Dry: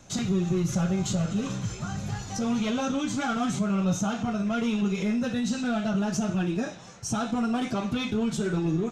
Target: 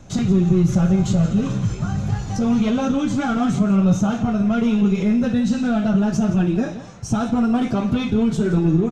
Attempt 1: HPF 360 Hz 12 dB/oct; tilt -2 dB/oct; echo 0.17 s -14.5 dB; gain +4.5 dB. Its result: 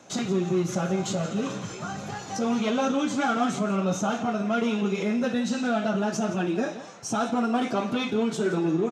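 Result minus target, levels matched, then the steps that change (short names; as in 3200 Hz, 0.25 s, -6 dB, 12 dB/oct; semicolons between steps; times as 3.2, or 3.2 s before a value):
500 Hz band +6.0 dB
remove: HPF 360 Hz 12 dB/oct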